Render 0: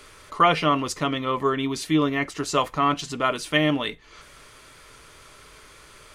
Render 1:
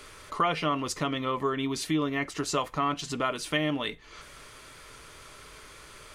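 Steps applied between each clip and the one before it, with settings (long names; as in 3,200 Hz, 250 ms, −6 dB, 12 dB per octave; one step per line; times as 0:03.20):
downward compressor 2 to 1, threshold −29 dBFS, peak gain reduction 9 dB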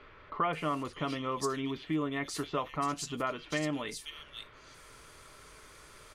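multiband delay without the direct sound lows, highs 530 ms, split 3,100 Hz
level −4.5 dB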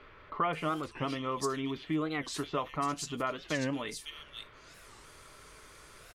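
wow of a warped record 45 rpm, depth 250 cents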